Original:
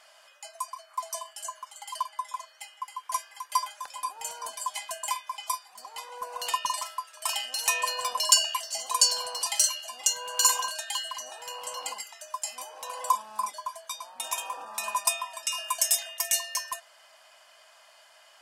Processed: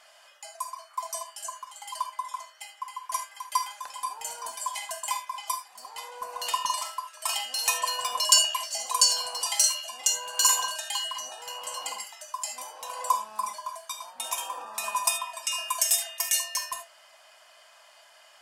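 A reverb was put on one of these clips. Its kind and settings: non-linear reverb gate 0.1 s flat, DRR 5.5 dB

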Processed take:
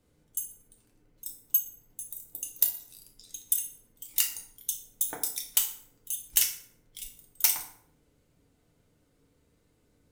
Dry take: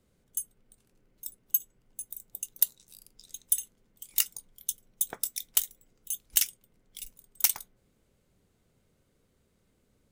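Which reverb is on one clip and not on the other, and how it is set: FDN reverb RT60 0.63 s, low-frequency decay 1×, high-frequency decay 0.7×, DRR 0 dB; gain -1 dB

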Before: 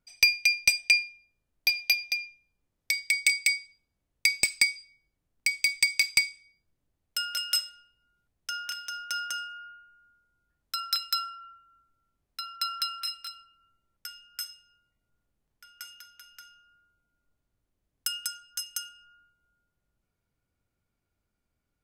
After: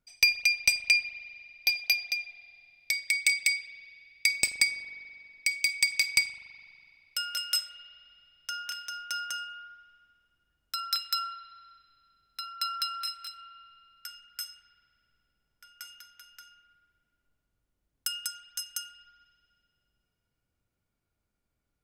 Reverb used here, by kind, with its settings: spring tank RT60 2.6 s, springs 41 ms, chirp 25 ms, DRR 11.5 dB; gain -1.5 dB

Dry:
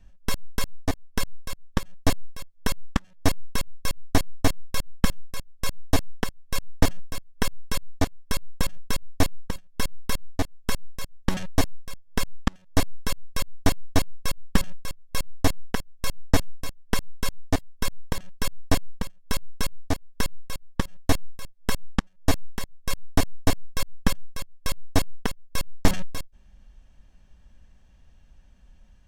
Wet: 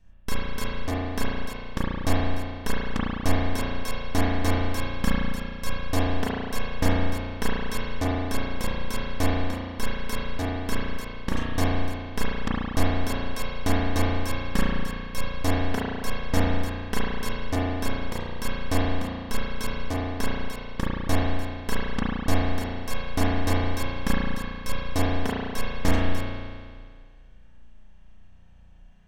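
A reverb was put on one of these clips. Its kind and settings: spring tank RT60 1.9 s, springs 34 ms, chirp 55 ms, DRR -7 dB; gain -5.5 dB

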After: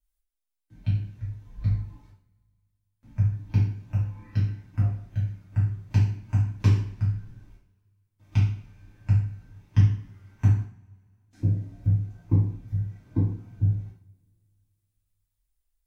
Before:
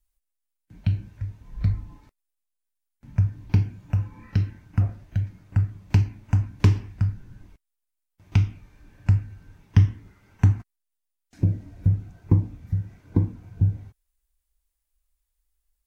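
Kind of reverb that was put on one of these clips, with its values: two-slope reverb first 0.45 s, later 2.2 s, from -27 dB, DRR -7 dB; gain -12 dB

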